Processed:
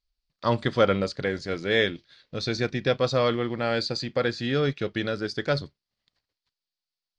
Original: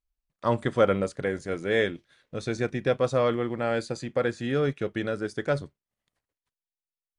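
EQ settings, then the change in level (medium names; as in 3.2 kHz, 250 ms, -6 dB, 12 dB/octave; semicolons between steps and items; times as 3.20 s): resonant low-pass 4.6 kHz, resonance Q 4.3; peaking EQ 560 Hz -2.5 dB 2.6 oct; +2.5 dB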